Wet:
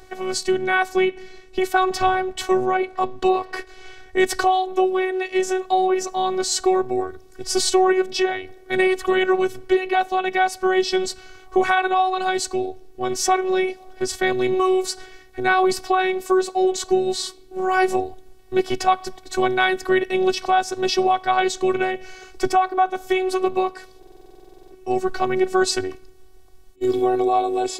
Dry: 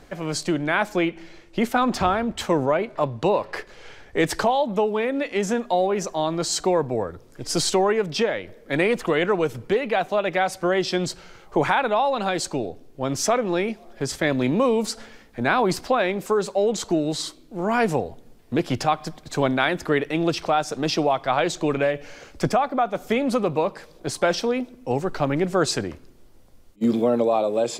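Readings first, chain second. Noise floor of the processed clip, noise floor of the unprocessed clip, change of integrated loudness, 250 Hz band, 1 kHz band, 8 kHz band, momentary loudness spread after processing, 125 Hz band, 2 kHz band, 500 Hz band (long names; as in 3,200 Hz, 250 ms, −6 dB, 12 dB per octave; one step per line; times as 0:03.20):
−47 dBFS, −49 dBFS, +2.0 dB, +0.5 dB, +4.5 dB, +2.0 dB, 8 LU, −11.0 dB, +3.0 dB, +1.5 dB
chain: phases set to zero 374 Hz
buffer that repeats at 0:23.98, samples 2,048, times 15
level +4.5 dB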